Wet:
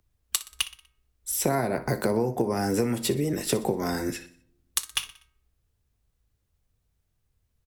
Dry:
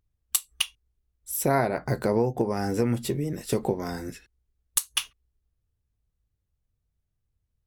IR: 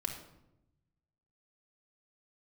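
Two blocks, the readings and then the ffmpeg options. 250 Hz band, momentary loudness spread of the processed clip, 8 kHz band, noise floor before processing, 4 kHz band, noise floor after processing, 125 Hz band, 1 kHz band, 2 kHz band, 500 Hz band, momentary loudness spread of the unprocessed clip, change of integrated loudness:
+0.5 dB, 6 LU, 0.0 dB, −79 dBFS, +0.5 dB, −75 dBFS, −1.5 dB, −1.0 dB, +0.5 dB, −0.5 dB, 8 LU, 0.0 dB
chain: -filter_complex "[0:a]lowshelf=frequency=220:gain=-5.5,bandreject=frequency=315.2:width_type=h:width=4,bandreject=frequency=630.4:width_type=h:width=4,bandreject=frequency=945.6:width_type=h:width=4,bandreject=frequency=1260.8:width_type=h:width=4,bandreject=frequency=1576:width_type=h:width=4,bandreject=frequency=1891.2:width_type=h:width=4,bandreject=frequency=2206.4:width_type=h:width=4,acrossover=split=120|310|7400[link_01][link_02][link_03][link_04];[link_01]acompressor=threshold=-49dB:ratio=4[link_05];[link_02]acompressor=threshold=-37dB:ratio=4[link_06];[link_03]acompressor=threshold=-36dB:ratio=4[link_07];[link_04]acompressor=threshold=-41dB:ratio=4[link_08];[link_05][link_06][link_07][link_08]amix=inputs=4:normalize=0,aecho=1:1:61|122|183|244:0.15|0.0718|0.0345|0.0165,asplit=2[link_09][link_10];[1:a]atrim=start_sample=2205[link_11];[link_10][link_11]afir=irnorm=-1:irlink=0,volume=-21dB[link_12];[link_09][link_12]amix=inputs=2:normalize=0,volume=8dB"

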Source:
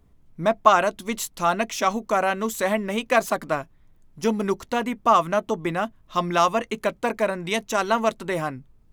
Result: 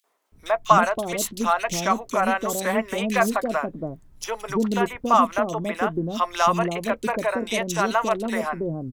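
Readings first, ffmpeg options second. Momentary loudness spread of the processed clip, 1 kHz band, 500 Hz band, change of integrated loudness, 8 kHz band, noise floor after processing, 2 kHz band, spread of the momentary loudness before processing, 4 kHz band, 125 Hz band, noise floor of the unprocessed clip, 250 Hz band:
9 LU, +0.5 dB, −0.5 dB, +0.5 dB, +2.5 dB, −52 dBFS, +0.5 dB, 8 LU, 0.0 dB, +2.5 dB, −57 dBFS, +1.5 dB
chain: -filter_complex "[0:a]asplit=2[link_01][link_02];[link_02]acompressor=threshold=-30dB:ratio=6,volume=-2dB[link_03];[link_01][link_03]amix=inputs=2:normalize=0,acrossover=split=520|2800[link_04][link_05][link_06];[link_05]adelay=40[link_07];[link_04]adelay=320[link_08];[link_08][link_07][link_06]amix=inputs=3:normalize=0"

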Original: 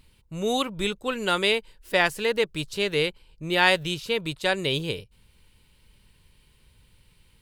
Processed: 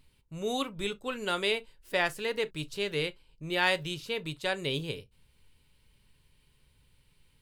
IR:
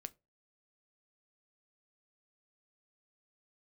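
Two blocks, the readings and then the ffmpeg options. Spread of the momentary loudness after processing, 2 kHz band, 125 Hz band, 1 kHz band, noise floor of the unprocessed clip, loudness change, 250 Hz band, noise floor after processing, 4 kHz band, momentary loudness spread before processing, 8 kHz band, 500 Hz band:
8 LU, −6.5 dB, −5.5 dB, −7.0 dB, −61 dBFS, −6.5 dB, −7.0 dB, −67 dBFS, −7.0 dB, 8 LU, −7.0 dB, −6.5 dB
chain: -filter_complex "[1:a]atrim=start_sample=2205,atrim=end_sample=3087[link_01];[0:a][link_01]afir=irnorm=-1:irlink=0,asoftclip=type=hard:threshold=-10.5dB,volume=-2dB"

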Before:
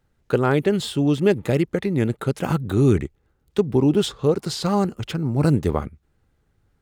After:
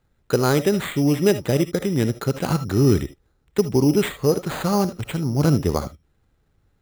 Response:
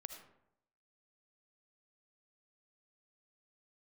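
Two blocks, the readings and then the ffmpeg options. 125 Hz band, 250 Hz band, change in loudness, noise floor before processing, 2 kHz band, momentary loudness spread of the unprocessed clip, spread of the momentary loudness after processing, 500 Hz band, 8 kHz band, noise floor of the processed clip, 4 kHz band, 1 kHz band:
+0.5 dB, +0.5 dB, +0.5 dB, −67 dBFS, +1.0 dB, 7 LU, 7 LU, +0.5 dB, +5.5 dB, −66 dBFS, 0.0 dB, +0.5 dB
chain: -filter_complex "[0:a]acrusher=samples=8:mix=1:aa=0.000001[link_01];[1:a]atrim=start_sample=2205,atrim=end_sample=3528[link_02];[link_01][link_02]afir=irnorm=-1:irlink=0,volume=5.5dB"

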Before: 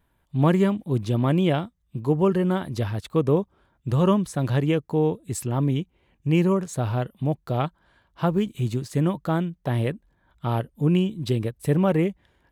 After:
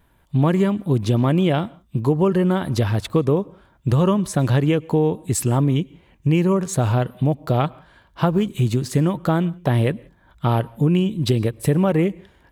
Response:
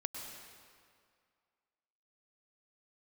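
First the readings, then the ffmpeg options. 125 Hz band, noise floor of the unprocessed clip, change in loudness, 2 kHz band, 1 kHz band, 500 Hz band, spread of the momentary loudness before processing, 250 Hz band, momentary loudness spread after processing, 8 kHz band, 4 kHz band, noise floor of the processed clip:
+4.5 dB, −68 dBFS, +4.0 dB, +4.0 dB, +4.0 dB, +3.0 dB, 8 LU, +3.5 dB, 6 LU, +8.5 dB, +5.0 dB, −58 dBFS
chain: -filter_complex "[0:a]acompressor=threshold=-24dB:ratio=4,asplit=2[link_01][link_02];[1:a]atrim=start_sample=2205,afade=type=out:start_time=0.24:duration=0.01,atrim=end_sample=11025[link_03];[link_02][link_03]afir=irnorm=-1:irlink=0,volume=-16dB[link_04];[link_01][link_04]amix=inputs=2:normalize=0,volume=8dB"

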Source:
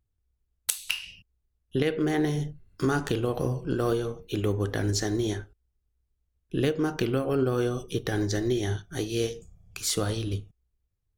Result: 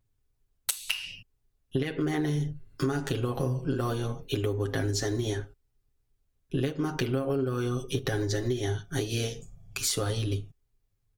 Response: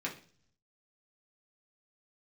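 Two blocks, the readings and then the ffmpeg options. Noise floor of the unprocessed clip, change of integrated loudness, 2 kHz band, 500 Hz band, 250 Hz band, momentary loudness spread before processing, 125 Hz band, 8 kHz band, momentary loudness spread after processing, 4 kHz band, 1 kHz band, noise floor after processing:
−78 dBFS, −2.0 dB, −1.5 dB, −3.0 dB, −3.0 dB, 7 LU, 0.0 dB, −1.0 dB, 7 LU, −0.5 dB, −2.5 dB, −76 dBFS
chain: -af "aecho=1:1:7.4:0.82,acompressor=threshold=-28dB:ratio=6,volume=2.5dB"

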